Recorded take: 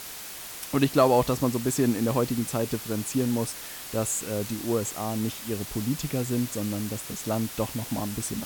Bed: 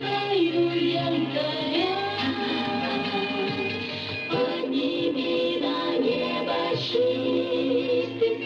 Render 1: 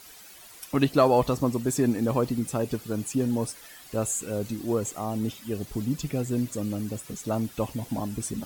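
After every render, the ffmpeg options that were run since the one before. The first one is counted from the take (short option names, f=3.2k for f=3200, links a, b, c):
-af "afftdn=nr=12:nf=-40"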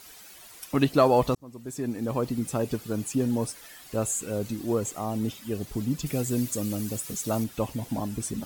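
-filter_complex "[0:a]asettb=1/sr,asplit=3[a][b][c];[a]atrim=end=6.064[d];[b]atrim=start=6.06:end=7.44,asetpts=PTS-STARTPTS,afade=t=in:d=0.004:c=qsin,afade=t=out:st=1.376:d=0.004:c=qsin,highshelf=f=4.2k:g=9.5[e];[c]atrim=start=7.436[f];[d][e]acrossfade=d=0.004:c1=hsin:c2=qsin[g];[g][f]acrossfade=d=0.004:c1=qsin:c2=hsin,asplit=2[h][i];[h]atrim=end=1.35,asetpts=PTS-STARTPTS,afade=t=out:st=1.346:d=0.004:c=hsin[j];[i]atrim=start=1.35,asetpts=PTS-STARTPTS,afade=t=in:d=1.17[k];[j][k]concat=n=2:v=0:a=1"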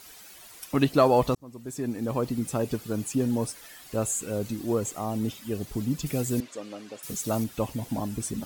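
-filter_complex "[0:a]asettb=1/sr,asplit=3[a][b][c];[a]atrim=end=6.404[d];[b]atrim=start=6.4:end=7.03,asetpts=PTS-STARTPTS,afade=t=in:d=0.004:c=qsin,afade=t=out:st=0.626:d=0.004:c=qsin,highpass=480,lowpass=3.3k[e];[c]atrim=start=7.026[f];[d][e]acrossfade=d=0.004:c1=hsin:c2=qsin[g];[g][f]acrossfade=d=0.004:c1=qsin:c2=hsin"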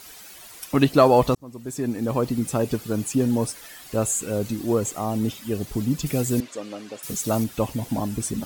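-af "volume=4.5dB"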